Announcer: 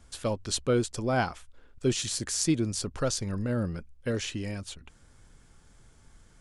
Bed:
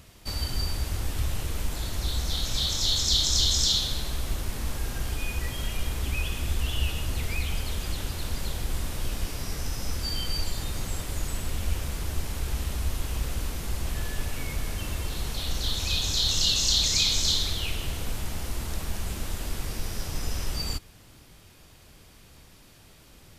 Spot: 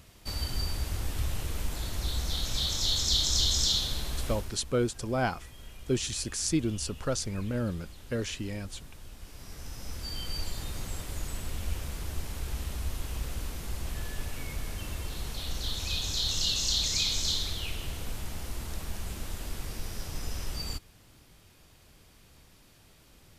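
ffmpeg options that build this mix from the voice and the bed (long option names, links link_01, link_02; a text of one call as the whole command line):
ffmpeg -i stem1.wav -i stem2.wav -filter_complex "[0:a]adelay=4050,volume=-2dB[link_01];[1:a]volume=9dB,afade=type=out:start_time=4.26:duration=0.34:silence=0.199526,afade=type=in:start_time=9.17:duration=1.28:silence=0.251189[link_02];[link_01][link_02]amix=inputs=2:normalize=0" out.wav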